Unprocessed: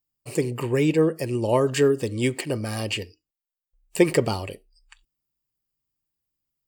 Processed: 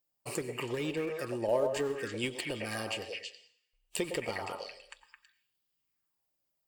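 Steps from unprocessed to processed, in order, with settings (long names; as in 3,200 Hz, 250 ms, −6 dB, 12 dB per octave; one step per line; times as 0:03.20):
in parallel at −7.5 dB: comparator with hysteresis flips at −17 dBFS
on the sum: low-shelf EQ 130 Hz −12 dB
echo through a band-pass that steps 108 ms, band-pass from 680 Hz, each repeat 1.4 octaves, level −2 dB
downward compressor 3 to 1, threshold −37 dBFS, peak gain reduction 17.5 dB
on a send at −15 dB: convolution reverb RT60 0.65 s, pre-delay 86 ms
on the sum: auto-filter bell 0.62 Hz 570–3,500 Hz +9 dB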